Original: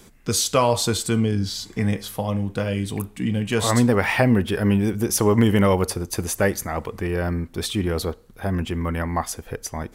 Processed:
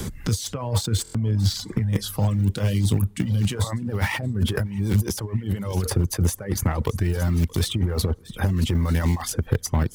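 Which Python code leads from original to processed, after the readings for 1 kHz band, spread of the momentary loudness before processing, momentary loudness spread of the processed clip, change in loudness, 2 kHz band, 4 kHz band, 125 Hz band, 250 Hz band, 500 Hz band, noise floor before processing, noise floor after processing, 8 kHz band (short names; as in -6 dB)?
-8.0 dB, 9 LU, 4 LU, -2.0 dB, -6.0 dB, -2.5 dB, +3.0 dB, -4.5 dB, -8.5 dB, -49 dBFS, -45 dBFS, -4.0 dB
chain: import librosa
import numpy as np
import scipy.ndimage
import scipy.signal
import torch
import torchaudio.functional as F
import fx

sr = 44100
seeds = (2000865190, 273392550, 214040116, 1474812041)

p1 = fx.peak_eq(x, sr, hz=2500.0, db=-5.0, octaves=0.21)
p2 = np.where(np.abs(p1) >= 10.0 ** (-23.5 / 20.0), p1, 0.0)
p3 = p1 + F.gain(torch.from_numpy(p2), -6.0).numpy()
p4 = fx.over_compress(p3, sr, threshold_db=-26.0, ratio=-1.0)
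p5 = fx.peak_eq(p4, sr, hz=97.0, db=13.5, octaves=2.1)
p6 = fx.notch(p5, sr, hz=690.0, q=12.0)
p7 = fx.echo_feedback(p6, sr, ms=624, feedback_pct=51, wet_db=-21.5)
p8 = fx.dereverb_blind(p7, sr, rt60_s=0.66)
p9 = fx.buffer_glitch(p8, sr, at_s=(1.03,), block=1024, repeats=4)
p10 = fx.band_squash(p9, sr, depth_pct=70)
y = F.gain(torch.from_numpy(p10), -5.0).numpy()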